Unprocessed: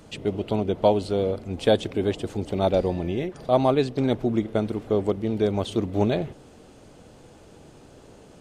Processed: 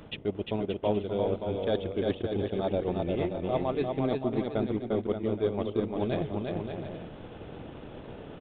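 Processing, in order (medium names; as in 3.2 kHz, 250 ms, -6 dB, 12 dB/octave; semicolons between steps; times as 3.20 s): transient shaper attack +5 dB, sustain -8 dB; reverse; compression 5:1, threshold -32 dBFS, peak gain reduction 20 dB; reverse; bouncing-ball echo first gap 350 ms, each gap 0.65×, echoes 5; resampled via 8 kHz; trim +3.5 dB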